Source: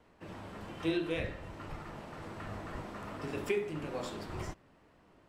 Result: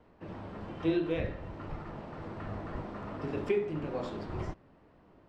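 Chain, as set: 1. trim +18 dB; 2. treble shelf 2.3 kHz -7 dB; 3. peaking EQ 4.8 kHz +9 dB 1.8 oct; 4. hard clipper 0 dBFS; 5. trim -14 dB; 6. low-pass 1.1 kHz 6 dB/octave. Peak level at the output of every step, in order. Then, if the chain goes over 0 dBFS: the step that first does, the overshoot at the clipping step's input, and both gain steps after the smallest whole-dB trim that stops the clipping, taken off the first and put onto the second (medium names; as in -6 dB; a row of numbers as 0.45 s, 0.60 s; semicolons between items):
-1.5 dBFS, -2.5 dBFS, -1.5 dBFS, -1.5 dBFS, -15.5 dBFS, -17.5 dBFS; nothing clips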